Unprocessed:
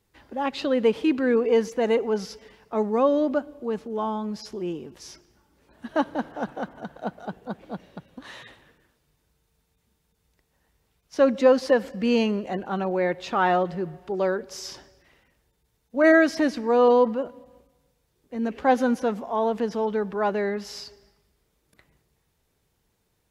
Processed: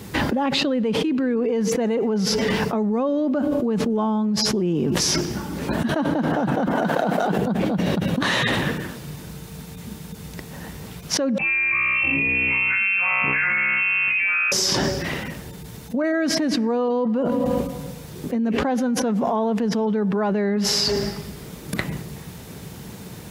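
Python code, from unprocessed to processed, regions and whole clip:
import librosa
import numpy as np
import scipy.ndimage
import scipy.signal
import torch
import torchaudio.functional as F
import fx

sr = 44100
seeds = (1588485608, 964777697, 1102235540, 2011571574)

y = fx.chain(x, sr, fx.highpass(hz=310.0, slope=12),
    fx.over_compress(threshold_db=-37.0, ratio=-1.0),
    fx.leveller(passes=1), at=(6.73, 7.38))
y = fx.chain(y, sr, fx.comb_fb(f0_hz=64.0, decay_s=1.3, harmonics='all', damping=0.0, mix_pct=100),
    fx.freq_invert(carrier_hz=2900), at=(11.38, 14.52))
y = scipy.signal.sosfilt(scipy.signal.butter(2, 68.0, 'highpass', fs=sr, output='sos'), y)
y = fx.peak_eq(y, sr, hz=180.0, db=10.0, octaves=1.3)
y = fx.env_flatten(y, sr, amount_pct=100)
y = y * librosa.db_to_amplitude(-9.0)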